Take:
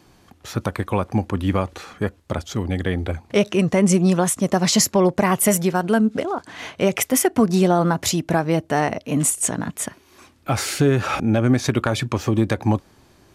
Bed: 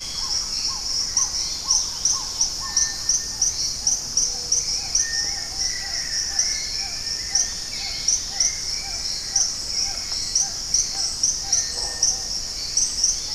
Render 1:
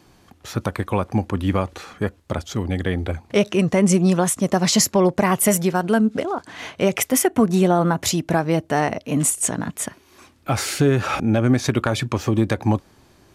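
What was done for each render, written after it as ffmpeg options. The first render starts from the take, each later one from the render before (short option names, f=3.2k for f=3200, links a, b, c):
-filter_complex "[0:a]asettb=1/sr,asplit=3[a][b][c];[a]atrim=end=7.254[d];[b]atrim=start=7.25:end=8.03,asetpts=PTS-STARTPTS,afade=t=in:d=0.004:c=qsin,afade=t=out:st=0.776:d=0.004:c=qsin,equalizer=f=4.9k:t=o:w=0.33:g=-10[e];[c]atrim=start=8.026[f];[d][e]acrossfade=d=0.004:c1=hsin:c2=qsin[g];[g][f]acrossfade=d=0.004:c1=qsin:c2=hsin"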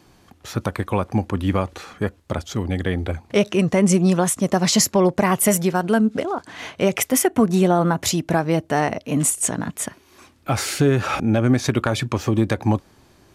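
-af anull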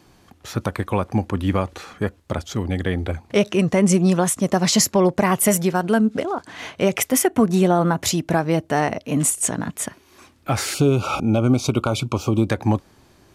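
-filter_complex "[0:a]asettb=1/sr,asplit=3[a][b][c];[a]atrim=end=10.744[d];[b]atrim=start=10.74:end=12.5,asetpts=PTS-STARTPTS,afade=t=in:d=0.004:c=qsin,afade=t=out:st=1.756:d=0.004:c=qsin,asuperstop=centerf=1800:order=8:qfactor=2.3[e];[c]atrim=start=12.496[f];[d][e]acrossfade=d=0.004:c1=hsin:c2=qsin[g];[g][f]acrossfade=d=0.004:c1=qsin:c2=hsin"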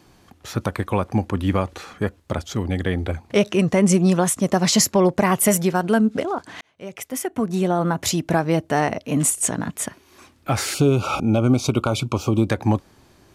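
-filter_complex "[0:a]asplit=2[a][b];[a]atrim=end=6.61,asetpts=PTS-STARTPTS,afade=t=out:st=6.606:d=0.004:c=hsin[c];[b]atrim=start=6.61,asetpts=PTS-STARTPTS,afade=t=in:d=1.65[d];[c][d]concat=n=2:v=0:a=1"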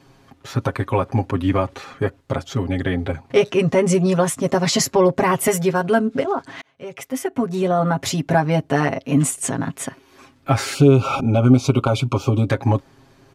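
-af "highshelf=f=5.7k:g=-9,aecho=1:1:7.4:0.87"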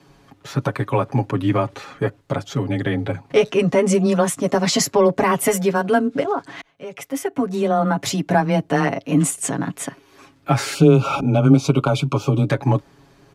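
-af "afreqshift=15"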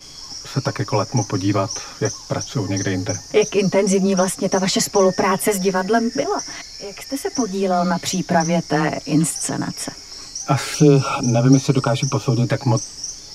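-filter_complex "[1:a]volume=-9.5dB[a];[0:a][a]amix=inputs=2:normalize=0"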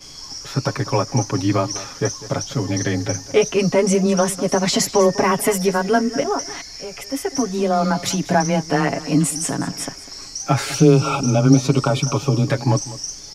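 -af "aecho=1:1:199:0.15"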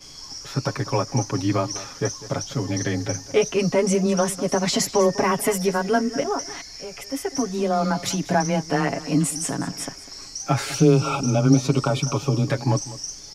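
-af "volume=-3.5dB"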